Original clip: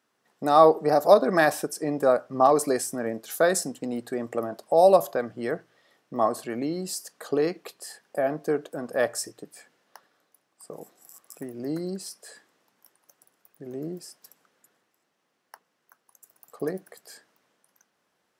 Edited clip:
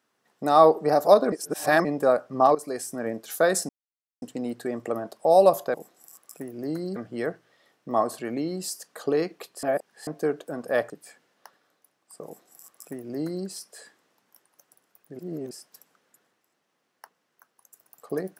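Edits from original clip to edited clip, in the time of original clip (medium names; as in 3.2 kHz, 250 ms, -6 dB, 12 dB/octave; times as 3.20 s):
1.32–1.85 s: reverse
2.55–3.09 s: fade in, from -15 dB
3.69 s: insert silence 0.53 s
7.88–8.32 s: reverse
9.15–9.40 s: delete
10.75–11.97 s: copy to 5.21 s
13.69–14.01 s: reverse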